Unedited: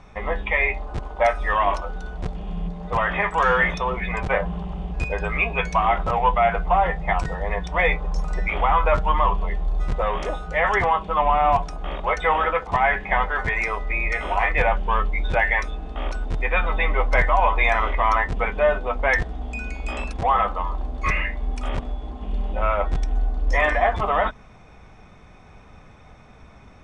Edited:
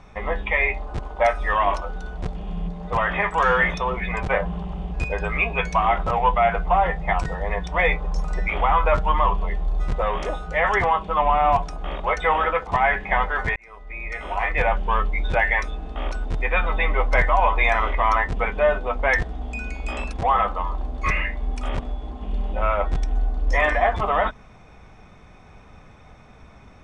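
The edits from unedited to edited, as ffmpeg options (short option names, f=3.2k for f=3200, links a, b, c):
-filter_complex "[0:a]asplit=2[a][b];[a]atrim=end=13.56,asetpts=PTS-STARTPTS,afade=t=out:st=13.556:d=0.004:c=hsin[c];[b]atrim=start=13.56,asetpts=PTS-STARTPTS,afade=t=in:d=1.22[d];[c][d]concat=n=2:v=0:a=1"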